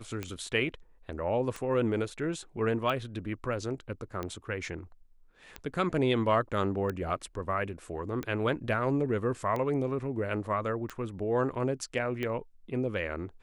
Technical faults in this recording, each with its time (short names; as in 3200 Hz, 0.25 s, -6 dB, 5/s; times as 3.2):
tick 45 rpm -21 dBFS